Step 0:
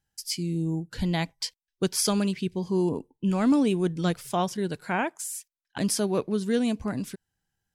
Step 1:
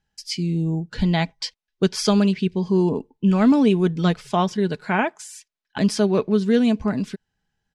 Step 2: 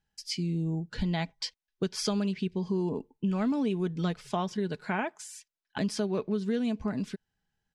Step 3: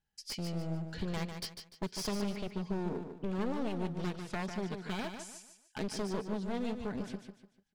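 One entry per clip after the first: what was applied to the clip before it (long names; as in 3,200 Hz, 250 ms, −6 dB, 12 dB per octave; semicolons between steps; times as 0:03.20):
low-pass filter 4,900 Hz 12 dB per octave; comb filter 4.7 ms, depth 34%; level +5.5 dB
downward compressor 3 to 1, threshold −22 dBFS, peak gain reduction 8 dB; level −5.5 dB
wavefolder on the positive side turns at −31 dBFS; repeating echo 148 ms, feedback 33%, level −7.5 dB; level −5 dB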